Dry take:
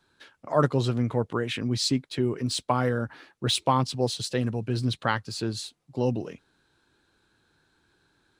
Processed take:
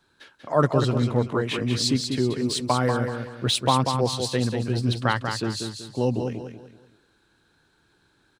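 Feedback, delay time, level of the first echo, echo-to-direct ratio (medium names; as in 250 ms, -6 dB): 34%, 190 ms, -6.0 dB, -5.5 dB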